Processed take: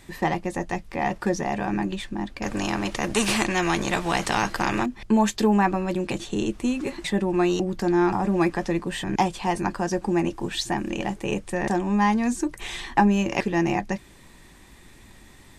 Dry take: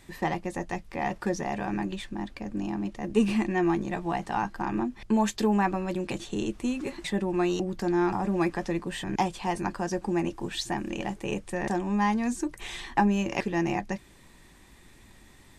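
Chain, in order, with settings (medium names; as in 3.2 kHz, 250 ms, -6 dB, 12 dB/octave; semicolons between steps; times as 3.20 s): 2.42–4.86 s: spectrum-flattening compressor 2:1; trim +4.5 dB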